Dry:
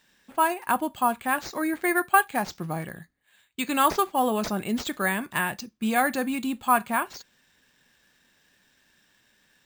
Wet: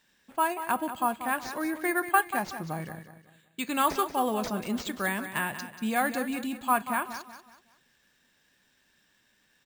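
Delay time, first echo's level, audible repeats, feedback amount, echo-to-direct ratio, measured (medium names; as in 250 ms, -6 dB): 187 ms, -11.0 dB, 3, 37%, -10.5 dB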